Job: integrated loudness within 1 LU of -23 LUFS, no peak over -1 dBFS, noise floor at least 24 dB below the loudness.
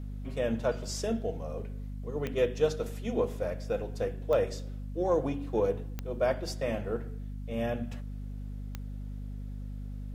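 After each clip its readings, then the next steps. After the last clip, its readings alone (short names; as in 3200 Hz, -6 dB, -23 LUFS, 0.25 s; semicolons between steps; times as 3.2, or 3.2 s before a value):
clicks 4; hum 50 Hz; harmonics up to 250 Hz; hum level -36 dBFS; loudness -33.5 LUFS; peak -14.5 dBFS; loudness target -23.0 LUFS
-> de-click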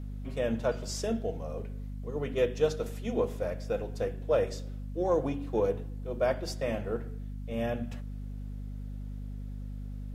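clicks 0; hum 50 Hz; harmonics up to 250 Hz; hum level -36 dBFS
-> notches 50/100/150/200/250 Hz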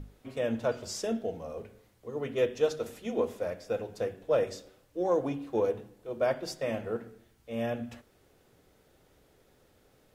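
hum none; loudness -32.5 LUFS; peak -15.5 dBFS; loudness target -23.0 LUFS
-> gain +9.5 dB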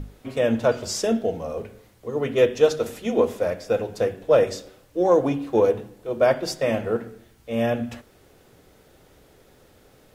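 loudness -23.0 LUFS; peak -6.0 dBFS; noise floor -56 dBFS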